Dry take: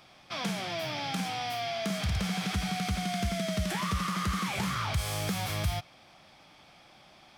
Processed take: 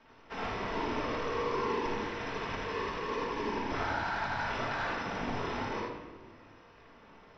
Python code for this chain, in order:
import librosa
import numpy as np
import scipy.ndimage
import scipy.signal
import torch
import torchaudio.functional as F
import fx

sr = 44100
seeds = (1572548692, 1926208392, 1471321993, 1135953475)

p1 = np.r_[np.sort(x[:len(x) // 8 * 8].reshape(-1, 8), axis=1).ravel(), x[len(x) // 8 * 8:]]
p2 = scipy.signal.sosfilt(scipy.signal.cheby1(5, 1.0, [270.0, 7500.0], 'bandpass', fs=sr, output='sos'), p1)
p3 = fx.whisperise(p2, sr, seeds[0])
p4 = p3 * np.sin(2.0 * np.pi * 310.0 * np.arange(len(p3)) / sr)
p5 = fx.air_absorb(p4, sr, metres=380.0)
p6 = p5 + fx.room_early_taps(p5, sr, ms=(57, 78), db=(-6.0, -5.0), dry=0)
p7 = fx.room_shoebox(p6, sr, seeds[1], volume_m3=1000.0, walls='mixed', distance_m=1.6)
y = p7 * librosa.db_to_amplitude(3.0)